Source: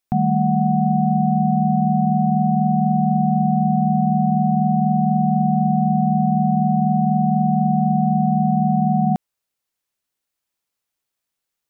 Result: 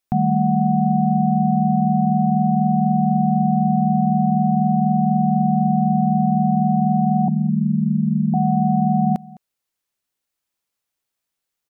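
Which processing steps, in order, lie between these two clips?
0:07.28–0:08.34: inverse Chebyshev low-pass filter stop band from 700 Hz, stop band 50 dB
single-tap delay 209 ms −22 dB

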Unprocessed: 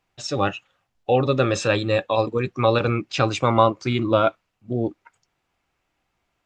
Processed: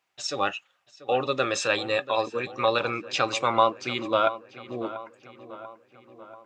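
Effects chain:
high-pass filter 850 Hz 6 dB per octave
feedback echo with a low-pass in the loop 688 ms, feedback 59%, low-pass 2,900 Hz, level −15 dB

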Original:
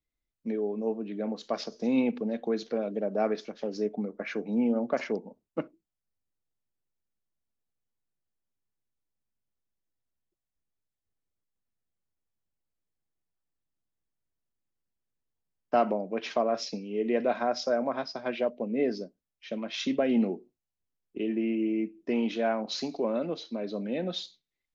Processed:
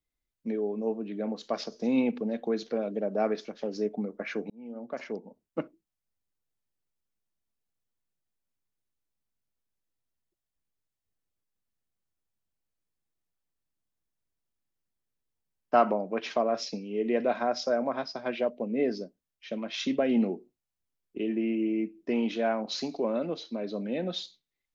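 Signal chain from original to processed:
0:04.50–0:05.61: fade in linear
0:15.74–0:16.20: parametric band 1,200 Hz +6.5 dB 1.1 octaves

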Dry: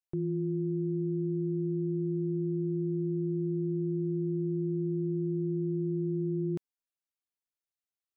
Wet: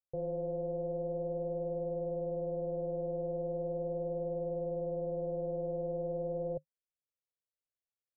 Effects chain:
phase distortion by the signal itself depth 0.68 ms
drawn EQ curve 150 Hz 0 dB, 220 Hz −27 dB, 530 Hz +5 dB, 1,100 Hz −23 dB
level −1 dB

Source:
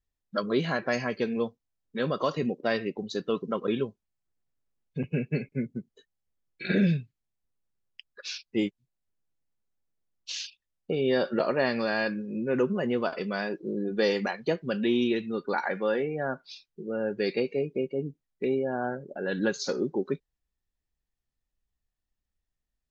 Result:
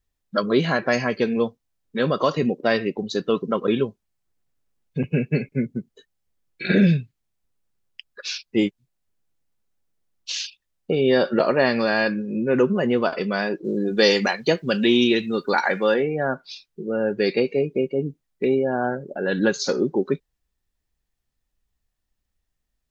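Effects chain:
0:13.64–0:15.94: high-shelf EQ 3,400 Hz +12 dB
level +7 dB

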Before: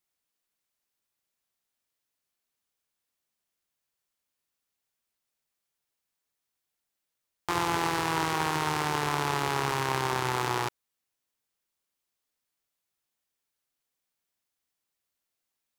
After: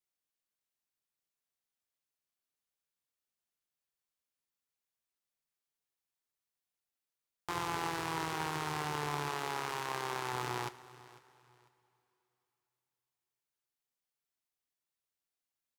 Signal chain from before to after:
0:09.29–0:10.33: bass and treble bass −9 dB, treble 0 dB
repeating echo 499 ms, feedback 28%, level −19.5 dB
coupled-rooms reverb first 0.29 s, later 3.4 s, from −18 dB, DRR 13 dB
level −8.5 dB

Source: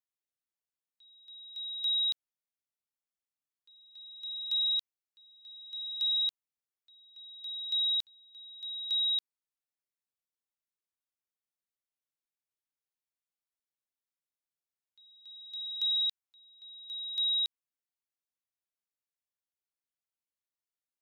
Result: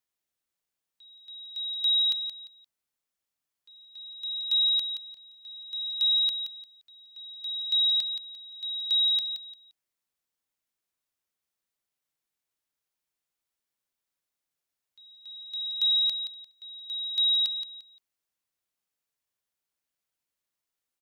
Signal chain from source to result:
repeating echo 174 ms, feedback 24%, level −9 dB
level +6.5 dB

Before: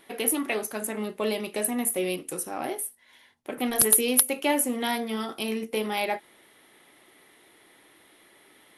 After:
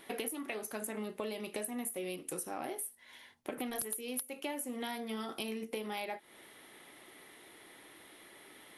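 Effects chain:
downward compressor 10 to 1, threshold −37 dBFS, peak gain reduction 23 dB
level +1 dB

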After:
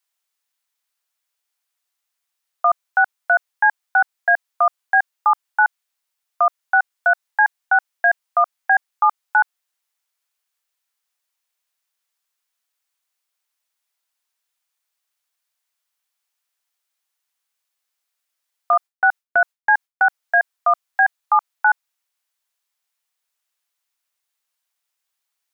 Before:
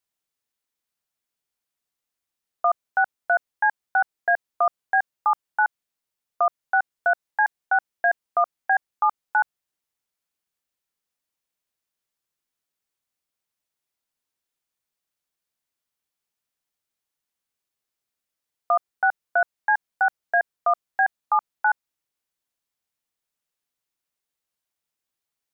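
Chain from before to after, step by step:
high-pass filter 790 Hz 12 dB per octave
0:18.73–0:20.06: noise gate with hold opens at −18 dBFS
level +6.5 dB

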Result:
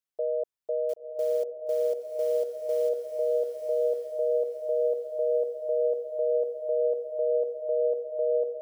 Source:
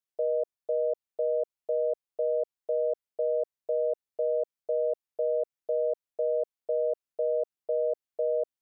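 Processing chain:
0:00.89–0:02.89: log-companded quantiser 6 bits
feedback delay with all-pass diffusion 1,051 ms, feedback 40%, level −4 dB
level −1 dB

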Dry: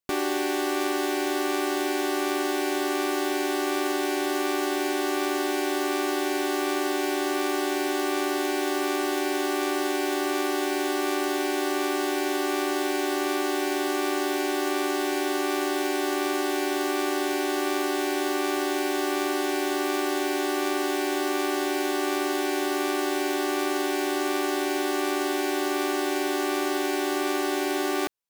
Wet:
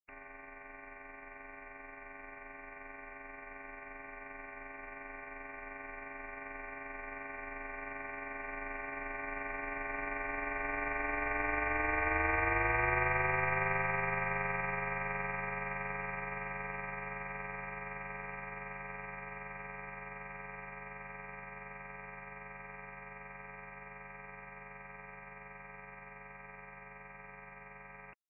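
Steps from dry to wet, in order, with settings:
ceiling on every frequency bin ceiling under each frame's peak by 24 dB
source passing by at 0:12.73, 11 m/s, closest 14 metres
voice inversion scrambler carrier 2,700 Hz

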